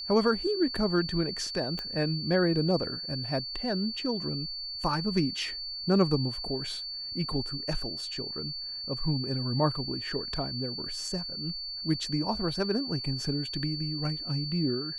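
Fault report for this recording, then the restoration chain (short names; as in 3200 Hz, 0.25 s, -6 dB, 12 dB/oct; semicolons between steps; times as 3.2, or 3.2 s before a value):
tone 4500 Hz -35 dBFS
1.79 pop -20 dBFS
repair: de-click; notch 4500 Hz, Q 30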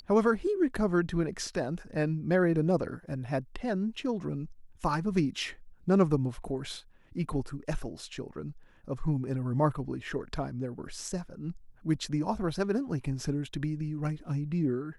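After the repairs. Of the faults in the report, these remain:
1.79 pop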